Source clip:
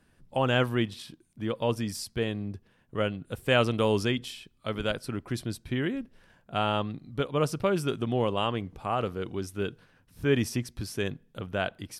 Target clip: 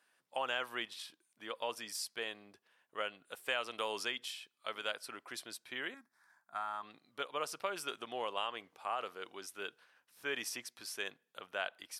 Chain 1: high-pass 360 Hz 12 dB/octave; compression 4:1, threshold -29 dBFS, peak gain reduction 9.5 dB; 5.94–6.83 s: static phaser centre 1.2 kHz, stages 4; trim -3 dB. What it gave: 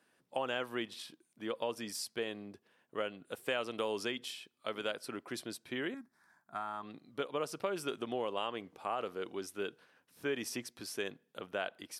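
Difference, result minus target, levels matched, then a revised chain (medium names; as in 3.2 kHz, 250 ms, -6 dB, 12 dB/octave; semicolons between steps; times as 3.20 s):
500 Hz band +4.0 dB
high-pass 800 Hz 12 dB/octave; compression 4:1, threshold -29 dBFS, peak gain reduction 7.5 dB; 5.94–6.83 s: static phaser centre 1.2 kHz, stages 4; trim -3 dB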